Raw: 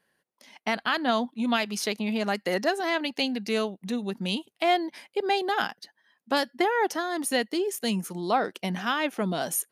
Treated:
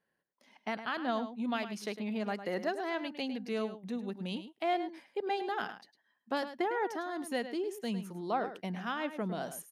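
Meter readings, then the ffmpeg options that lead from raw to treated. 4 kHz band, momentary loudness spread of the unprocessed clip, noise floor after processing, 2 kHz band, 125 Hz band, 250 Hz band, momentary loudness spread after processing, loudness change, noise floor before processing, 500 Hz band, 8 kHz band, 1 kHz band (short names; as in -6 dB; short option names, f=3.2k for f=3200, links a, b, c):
-13.0 dB, 6 LU, -81 dBFS, -10.0 dB, -7.0 dB, -7.0 dB, 6 LU, -8.5 dB, -78 dBFS, -7.5 dB, -16.5 dB, -8.0 dB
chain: -filter_complex "[0:a]highshelf=f=2.9k:g=-10,asplit=2[a][b];[b]adelay=105,volume=-11dB,highshelf=f=4k:g=-2.36[c];[a][c]amix=inputs=2:normalize=0,volume=-7.5dB"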